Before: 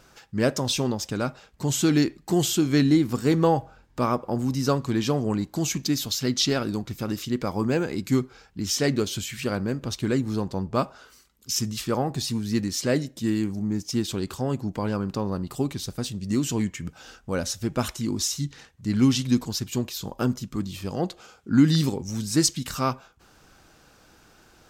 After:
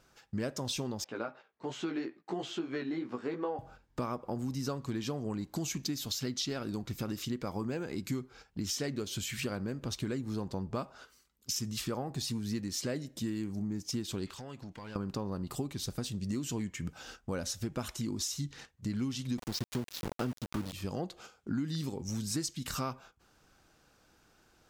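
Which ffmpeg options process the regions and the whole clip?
ffmpeg -i in.wav -filter_complex "[0:a]asettb=1/sr,asplit=3[link_01][link_02][link_03];[link_01]atrim=end=1.044[link_04];[link_02]atrim=start=1.04:end=3.59,asetpts=PTS-STARTPTS,afade=type=in:duration=0.004:curve=qsin,afade=type=out:start_time=2.546:duration=0.004:curve=qsin,highpass=340,lowpass=2400,flanger=delay=15.5:depth=2.4:speed=2.9[link_05];[link_03]atrim=start=3.586[link_06];[link_04][link_05]acrossfade=duration=0.004:curve1=hsin:curve2=qsin[link_07];[link_07][link_06]acrossfade=duration=0.004:curve1=qsin:curve2=hsin,asettb=1/sr,asplit=3[link_08][link_09][link_10];[link_08]atrim=end=14.264[link_11];[link_09]atrim=start=14.26:end=14.96,asetpts=PTS-STARTPTS,afade=type=in:duration=0.004:curve=qsin,afade=type=out:start_time=0.696:duration=0.004:curve=qsin,equalizer=frequency=2700:width_type=o:width=2.8:gain=13,acompressor=threshold=-39dB:ratio=10:attack=3.2:release=140:knee=1:detection=peak,aeval=exprs='clip(val(0),-1,0.0106)':channel_layout=same[link_12];[link_10]atrim=start=14.956[link_13];[link_11][link_12]acrossfade=duration=0.004:curve1=hsin:curve2=qsin[link_14];[link_14][link_13]acrossfade=duration=0.004:curve1=qsin:curve2=hsin,asettb=1/sr,asplit=3[link_15][link_16][link_17];[link_15]atrim=end=19.384[link_18];[link_16]atrim=start=19.38:end=20.73,asetpts=PTS-STARTPTS,afade=type=in:duration=0.004:curve=qsin,afade=type=out:start_time=1.346:duration=0.004:curve=qsin,lowpass=frequency=5600:width=0.5412,lowpass=frequency=5600:width=1.3066,acontrast=41,aeval=exprs='val(0)*gte(abs(val(0)),0.0501)':channel_layout=same[link_19];[link_17]atrim=start=20.726[link_20];[link_18][link_19]acrossfade=duration=0.004:curve1=hsin:curve2=qsin[link_21];[link_21][link_20]acrossfade=duration=0.004:curve1=qsin:curve2=hsin,agate=range=-9dB:threshold=-46dB:ratio=16:detection=peak,acompressor=threshold=-31dB:ratio=6,volume=-1.5dB" out.wav

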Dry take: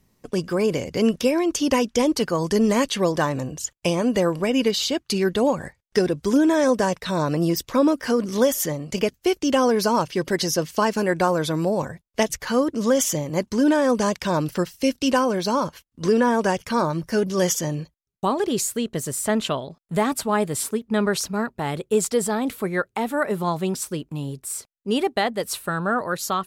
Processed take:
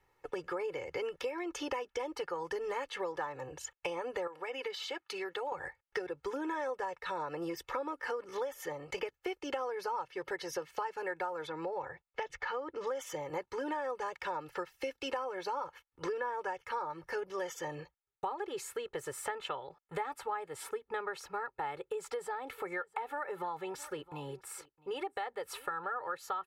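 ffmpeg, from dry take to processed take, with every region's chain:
ffmpeg -i in.wav -filter_complex "[0:a]asettb=1/sr,asplit=3[link_01][link_02][link_03];[link_01]atrim=end=4.274[link_04];[link_02]atrim=start=4.27:end=5.52,asetpts=PTS-STARTPTS,afade=type=in:duration=0.004:curve=qsin,afade=type=out:start_time=1.246:duration=0.004:curve=qsin,highpass=frequency=470:poles=1,acompressor=threshold=-28dB:ratio=3:attack=3.2:release=140:knee=1:detection=peak[link_05];[link_03]atrim=start=5.516[link_06];[link_04][link_05]acrossfade=duration=0.004:curve1=hsin:curve2=qsin[link_07];[link_07][link_06]acrossfade=duration=0.004:curve1=qsin:curve2=hsin,asettb=1/sr,asplit=3[link_08][link_09][link_10];[link_08]atrim=end=11.474[link_11];[link_09]atrim=start=11.47:end=12.87,asetpts=PTS-STARTPTS,afade=type=in:duration=0.004:curve=qsin,afade=type=out:start_time=1.396:duration=0.004:curve=qsin,lowpass=5000,acompressor=threshold=-22dB:ratio=2:attack=3.2:release=140:knee=1:detection=peak[link_12];[link_10]atrim=start=12.866[link_13];[link_11][link_12]acrossfade=duration=0.004:curve1=hsin:curve2=qsin[link_14];[link_14][link_13]acrossfade=duration=0.004:curve1=qsin:curve2=hsin,asettb=1/sr,asplit=3[link_15][link_16][link_17];[link_15]atrim=end=21.814[link_18];[link_16]atrim=start=21.81:end=26.08,asetpts=PTS-STARTPTS,afade=type=in:duration=0.004:curve=qsin,afade=type=out:start_time=4.266:duration=0.004:curve=qsin,acompressor=threshold=-25dB:ratio=2:attack=3.2:release=140:knee=1:detection=peak,aecho=1:1:662:0.0668,atrim=end_sample=188307[link_19];[link_17]atrim=start=26.076[link_20];[link_18][link_19]acrossfade=duration=0.004:curve1=hsin:curve2=qsin[link_21];[link_21][link_20]acrossfade=duration=0.004:curve1=qsin:curve2=hsin,acrossover=split=580 2400:gain=0.141 1 0.112[link_22][link_23][link_24];[link_22][link_23][link_24]amix=inputs=3:normalize=0,aecho=1:1:2.3:0.94,acompressor=threshold=-35dB:ratio=6" out.wav

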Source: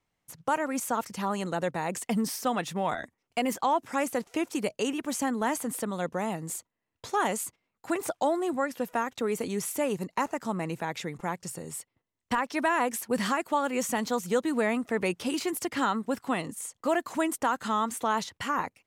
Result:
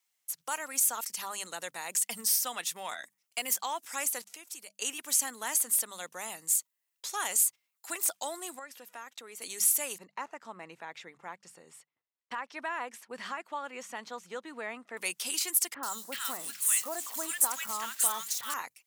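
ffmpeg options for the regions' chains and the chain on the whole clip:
ffmpeg -i in.wav -filter_complex "[0:a]asettb=1/sr,asplit=3[link_01][link_02][link_03];[link_01]atrim=end=4.244[link_04];[link_02]atrim=start=4.24:end=4.82,asetpts=PTS-STARTPTS,afade=type=in:duration=0.004:curve=qsin,afade=type=out:start_time=0.576:duration=0.004:curve=qsin,agate=range=-33dB:threshold=-59dB:ratio=3:release=100:detection=peak,acompressor=threshold=-48dB:ratio=2:attack=3.2:release=140:knee=1:detection=peak[link_05];[link_03]atrim=start=4.816[link_06];[link_04][link_05]acrossfade=duration=0.004:curve1=hsin:curve2=qsin[link_07];[link_07][link_06]acrossfade=duration=0.004:curve1=qsin:curve2=hsin,asettb=1/sr,asplit=3[link_08][link_09][link_10];[link_08]atrim=end=8.594[link_11];[link_09]atrim=start=8.59:end=9.42,asetpts=PTS-STARTPTS,afade=type=in:duration=0.004:curve=qsin,afade=type=out:start_time=0.826:duration=0.004:curve=qsin,lowpass=frequency=2700:poles=1,acompressor=threshold=-42dB:ratio=1.5:attack=3.2:release=140:knee=1:detection=peak[link_12];[link_10]atrim=start=9.416[link_13];[link_11][link_12]acrossfade=duration=0.004:curve1=hsin:curve2=qsin[link_14];[link_14][link_13]acrossfade=duration=0.004:curve1=qsin:curve2=hsin,asettb=1/sr,asplit=3[link_15][link_16][link_17];[link_15]atrim=end=9.984[link_18];[link_16]atrim=start=9.98:end=14.97,asetpts=PTS-STARTPTS,afade=type=in:duration=0.004:curve=qsin,afade=type=out:start_time=4.986:duration=0.004:curve=qsin,lowpass=frequency=2000:poles=1,aemphasis=mode=reproduction:type=75fm[link_19];[link_17]atrim=start=14.966[link_20];[link_18][link_19]acrossfade=duration=0.004:curve1=hsin:curve2=qsin[link_21];[link_21][link_20]acrossfade=duration=0.004:curve1=qsin:curve2=hsin,asettb=1/sr,asplit=3[link_22][link_23][link_24];[link_22]atrim=end=15.744[link_25];[link_23]atrim=start=15.74:end=18.54,asetpts=PTS-STARTPTS,afade=type=in:duration=0.004:curve=qsin,afade=type=out:start_time=2.796:duration=0.004:curve=qsin,aeval=exprs='val(0)+0.5*0.0112*sgn(val(0))':channel_layout=same,acrossover=split=1400|4600[link_26][link_27][link_28];[link_28]adelay=90[link_29];[link_27]adelay=380[link_30];[link_26][link_30][link_29]amix=inputs=3:normalize=0,atrim=end_sample=123480[link_31];[link_24]atrim=start=18.536[link_32];[link_25][link_31]acrossfade=duration=0.004:curve1=hsin:curve2=qsin[link_33];[link_33][link_32]acrossfade=duration=0.004:curve1=qsin:curve2=hsin,aderivative,bandreject=frequency=50:width_type=h:width=6,bandreject=frequency=100:width_type=h:width=6,bandreject=frequency=150:width_type=h:width=6,bandreject=frequency=200:width_type=h:width=6,volume=8.5dB" out.wav

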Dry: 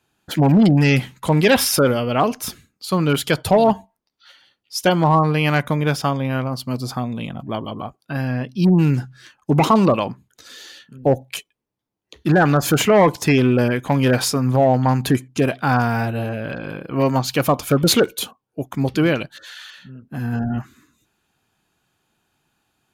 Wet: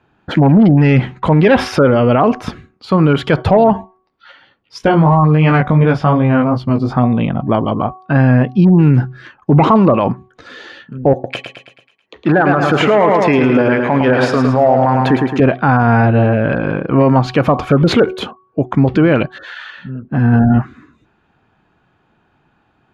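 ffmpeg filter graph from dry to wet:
ffmpeg -i in.wav -filter_complex "[0:a]asettb=1/sr,asplit=3[link_01][link_02][link_03];[link_01]atrim=end=4.784[link_04];[link_02]atrim=start=4.78:end=6.98,asetpts=PTS-STARTPTS,afade=type=in:duration=0.004:curve=qsin,afade=type=out:start_time=2.196:duration=0.004:curve=qsin,lowshelf=frequency=130:gain=8,flanger=delay=17.5:depth=2.1:speed=2.7[link_05];[link_03]atrim=start=6.976[link_06];[link_04][link_05]acrossfade=duration=0.004:curve1=hsin:curve2=qsin[link_07];[link_07][link_06]acrossfade=duration=0.004:curve1=qsin:curve2=hsin,asettb=1/sr,asplit=3[link_08][link_09][link_10];[link_08]atrim=end=11.134[link_11];[link_09]atrim=start=11.13:end=15.4,asetpts=PTS-STARTPTS,afade=type=in:duration=0.004:curve=qsin,afade=type=out:start_time=4.266:duration=0.004:curve=qsin,highpass=frequency=430:poles=1,aecho=1:1:109|218|327|436|545|654:0.447|0.228|0.116|0.0593|0.0302|0.0154,atrim=end_sample=188307[link_12];[link_10]atrim=start=15.396[link_13];[link_11][link_12]acrossfade=duration=0.004:curve1=hsin:curve2=qsin[link_14];[link_14][link_13]acrossfade=duration=0.004:curve1=qsin:curve2=hsin,lowpass=1800,bandreject=frequency=373.4:width_type=h:width=4,bandreject=frequency=746.8:width_type=h:width=4,bandreject=frequency=1120.2:width_type=h:width=4,alimiter=level_in=15dB:limit=-1dB:release=50:level=0:latency=1,volume=-2dB" out.wav

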